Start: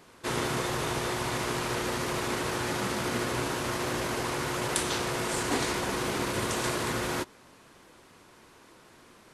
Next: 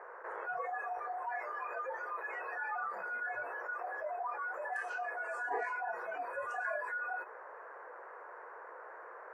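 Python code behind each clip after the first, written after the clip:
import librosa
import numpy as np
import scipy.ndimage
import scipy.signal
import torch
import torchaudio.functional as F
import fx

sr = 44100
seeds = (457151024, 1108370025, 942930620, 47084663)

y = fx.noise_reduce_blind(x, sr, reduce_db=28)
y = scipy.signal.sosfilt(scipy.signal.ellip(3, 1.0, 40, [470.0, 1700.0], 'bandpass', fs=sr, output='sos'), y)
y = fx.env_flatten(y, sr, amount_pct=70)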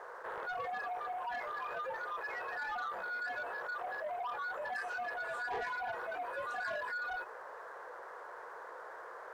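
y = fx.leveller(x, sr, passes=2)
y = F.gain(torch.from_numpy(y), -6.0).numpy()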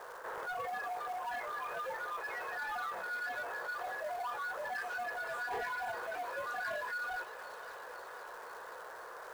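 y = fx.echo_wet_highpass(x, sr, ms=514, feedback_pct=70, hz=2500.0, wet_db=-6.5)
y = fx.quant_companded(y, sr, bits=6)
y = fx.dmg_crackle(y, sr, seeds[0], per_s=440.0, level_db=-47.0)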